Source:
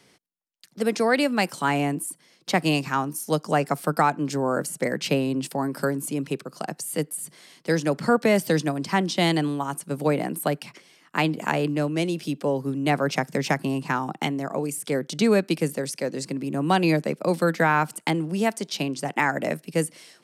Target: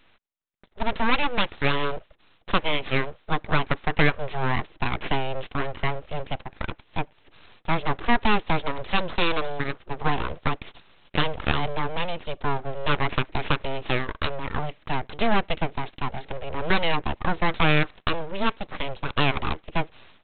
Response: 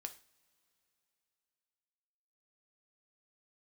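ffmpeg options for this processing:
-af "lowshelf=frequency=200:gain=-9,aresample=8000,aeval=exprs='abs(val(0))':channel_layout=same,aresample=44100,volume=3.5dB"

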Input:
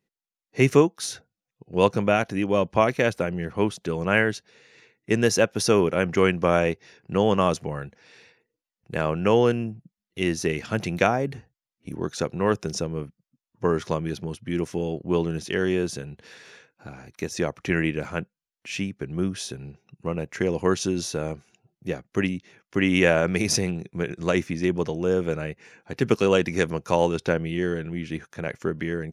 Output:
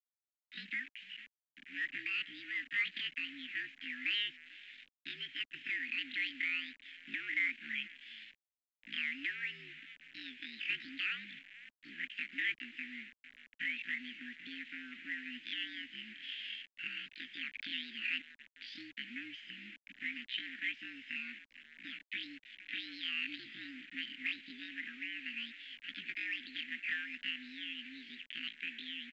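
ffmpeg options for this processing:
ffmpeg -i in.wav -filter_complex "[0:a]adynamicequalizer=threshold=0.0126:dfrequency=800:dqfactor=3.3:tfrequency=800:tqfactor=3.3:attack=5:release=100:ratio=0.375:range=2.5:mode=cutabove:tftype=bell,dynaudnorm=framelen=460:gausssize=21:maxgain=13dB,alimiter=limit=-11dB:level=0:latency=1:release=95,acompressor=threshold=-37dB:ratio=2,asetrate=85689,aresample=44100,atempo=0.514651,asplit=2[link_01][link_02];[link_02]adelay=450,lowpass=frequency=1300:poles=1,volume=-19.5dB,asplit=2[link_03][link_04];[link_04]adelay=450,lowpass=frequency=1300:poles=1,volume=0.39,asplit=2[link_05][link_06];[link_06]adelay=450,lowpass=frequency=1300:poles=1,volume=0.39[link_07];[link_01][link_03][link_05][link_07]amix=inputs=4:normalize=0,acrusher=bits=7:mix=0:aa=0.000001,asoftclip=type=hard:threshold=-25.5dB,asuperstop=centerf=780:order=12:qfactor=0.51,highpass=frequency=590:width_type=q:width=0.5412,highpass=frequency=590:width_type=q:width=1.307,lowpass=frequency=2900:width_type=q:width=0.5176,lowpass=frequency=2900:width_type=q:width=0.7071,lowpass=frequency=2900:width_type=q:width=1.932,afreqshift=-66,volume=9dB" -ar 16000 -c:a pcm_mulaw out.wav

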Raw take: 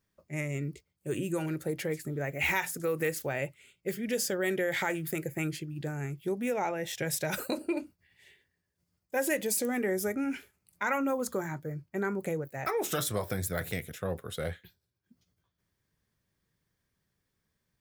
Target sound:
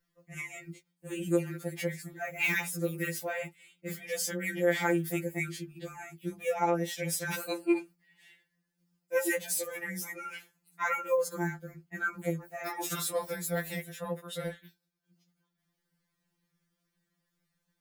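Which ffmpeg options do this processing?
ffmpeg -i in.wav -filter_complex "[0:a]bandreject=frequency=370:width=12,acrossover=split=210|3000[link_01][link_02][link_03];[link_01]acompressor=threshold=-43dB:ratio=8[link_04];[link_04][link_02][link_03]amix=inputs=3:normalize=0,afftfilt=real='re*2.83*eq(mod(b,8),0)':imag='im*2.83*eq(mod(b,8),0)':win_size=2048:overlap=0.75,volume=2dB" out.wav

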